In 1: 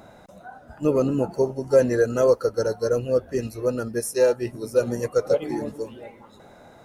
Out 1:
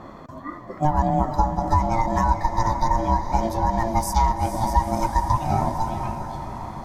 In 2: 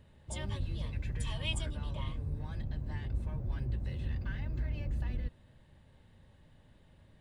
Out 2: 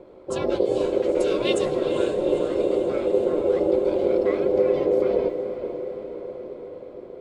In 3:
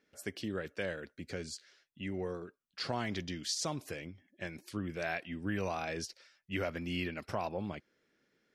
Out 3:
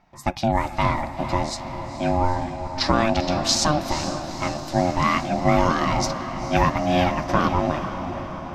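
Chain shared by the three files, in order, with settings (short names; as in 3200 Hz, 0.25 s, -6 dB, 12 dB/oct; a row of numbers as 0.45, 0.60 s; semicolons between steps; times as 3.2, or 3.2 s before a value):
fifteen-band EQ 1000 Hz -3 dB, 2500 Hz -8 dB, 10000 Hz -11 dB; compressor 5:1, threshold -27 dBFS; flange 0.26 Hz, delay 2.2 ms, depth 7.8 ms, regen -82%; ring modulator 450 Hz; on a send: diffused feedback echo 0.462 s, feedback 66%, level -9 dB; on the sum: mismatched tape noise reduction decoder only; match loudness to -23 LUFS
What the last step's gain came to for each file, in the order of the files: +16.5, +20.5, +24.5 dB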